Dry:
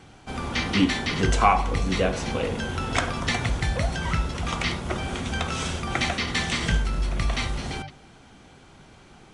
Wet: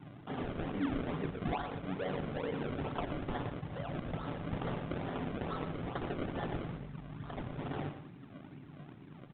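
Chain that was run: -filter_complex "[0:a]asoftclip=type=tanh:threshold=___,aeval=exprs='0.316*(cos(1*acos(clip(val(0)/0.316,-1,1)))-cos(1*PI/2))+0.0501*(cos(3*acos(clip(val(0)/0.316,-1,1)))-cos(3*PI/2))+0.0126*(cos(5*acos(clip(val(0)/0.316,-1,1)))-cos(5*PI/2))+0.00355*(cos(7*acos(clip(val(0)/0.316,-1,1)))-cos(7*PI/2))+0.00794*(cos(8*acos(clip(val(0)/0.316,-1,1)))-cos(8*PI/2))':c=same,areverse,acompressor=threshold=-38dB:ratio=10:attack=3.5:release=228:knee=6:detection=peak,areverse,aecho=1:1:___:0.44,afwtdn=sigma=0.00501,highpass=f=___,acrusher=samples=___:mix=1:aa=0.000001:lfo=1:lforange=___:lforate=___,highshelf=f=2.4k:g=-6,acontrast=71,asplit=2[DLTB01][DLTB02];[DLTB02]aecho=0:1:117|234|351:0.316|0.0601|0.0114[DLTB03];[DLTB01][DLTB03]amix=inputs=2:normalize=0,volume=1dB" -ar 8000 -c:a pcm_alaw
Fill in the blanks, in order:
-10dB, 6.9, 140, 34, 34, 2.3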